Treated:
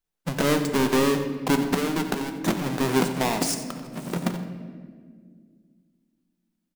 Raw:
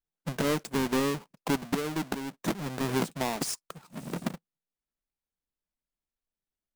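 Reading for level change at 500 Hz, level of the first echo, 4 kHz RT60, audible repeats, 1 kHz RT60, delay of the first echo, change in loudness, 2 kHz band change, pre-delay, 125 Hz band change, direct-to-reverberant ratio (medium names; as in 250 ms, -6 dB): +7.0 dB, -13.5 dB, 1.1 s, 1, 1.5 s, 90 ms, +6.5 dB, +6.5 dB, 4 ms, +6.0 dB, 6.0 dB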